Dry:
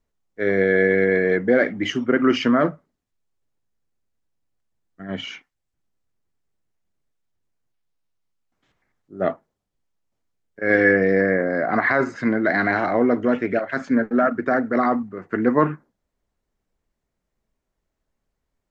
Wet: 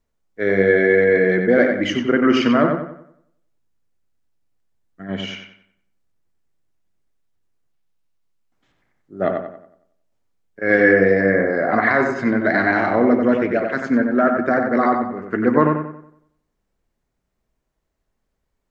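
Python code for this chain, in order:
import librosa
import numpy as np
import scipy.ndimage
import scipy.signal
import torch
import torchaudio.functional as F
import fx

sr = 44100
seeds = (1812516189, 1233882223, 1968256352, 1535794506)

y = fx.echo_filtered(x, sr, ms=92, feedback_pct=41, hz=3500.0, wet_db=-4.5)
y = y * librosa.db_to_amplitude(1.5)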